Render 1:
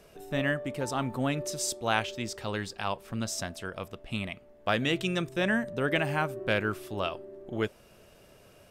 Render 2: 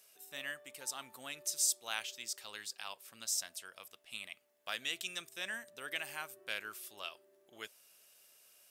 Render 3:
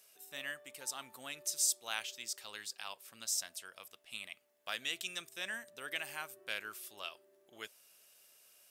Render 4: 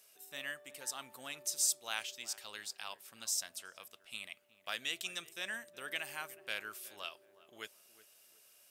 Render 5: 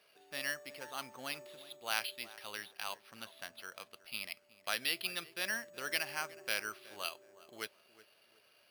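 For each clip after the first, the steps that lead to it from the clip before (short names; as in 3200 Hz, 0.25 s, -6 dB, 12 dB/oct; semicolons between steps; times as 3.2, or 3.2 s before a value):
differentiator; gain +1.5 dB
nothing audible
darkening echo 0.369 s, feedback 36%, low-pass 1200 Hz, level -16 dB
careless resampling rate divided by 6×, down filtered, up hold; gain +4.5 dB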